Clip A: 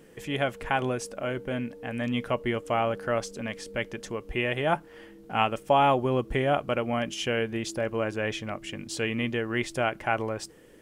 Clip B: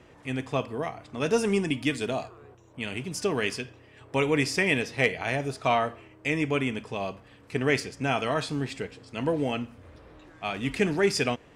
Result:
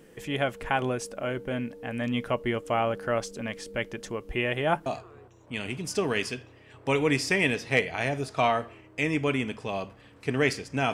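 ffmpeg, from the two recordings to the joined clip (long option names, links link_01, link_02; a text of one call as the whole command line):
ffmpeg -i cue0.wav -i cue1.wav -filter_complex "[0:a]apad=whole_dur=10.93,atrim=end=10.93,atrim=end=4.862[link_01];[1:a]atrim=start=2.128:end=8.2[link_02];[link_01][link_02]acrossfade=duration=0.004:curve1=hsin:curve2=hsin" out.wav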